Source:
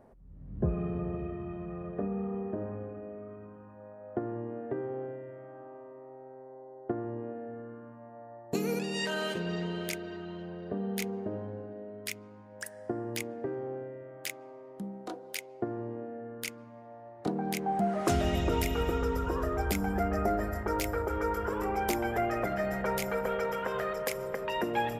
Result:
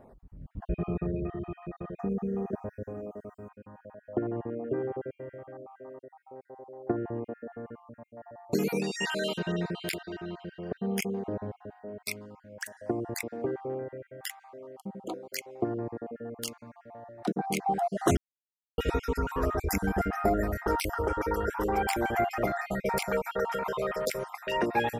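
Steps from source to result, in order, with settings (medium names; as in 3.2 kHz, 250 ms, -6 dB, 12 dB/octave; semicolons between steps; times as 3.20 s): random holes in the spectrogram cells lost 38%; 1.99–3.49 s: resonant high shelf 4.6 kHz +10 dB, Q 3; 18.17–18.78 s: mute; trim +4 dB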